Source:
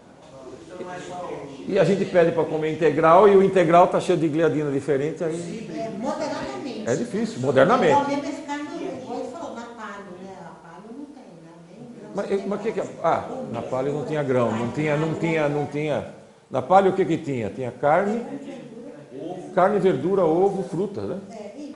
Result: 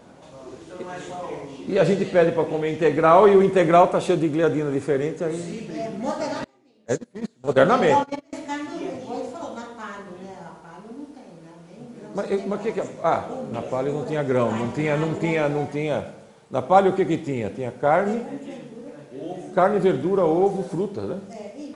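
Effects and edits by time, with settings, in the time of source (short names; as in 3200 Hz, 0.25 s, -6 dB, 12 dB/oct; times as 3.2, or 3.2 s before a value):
6.44–8.33 gate -23 dBFS, range -28 dB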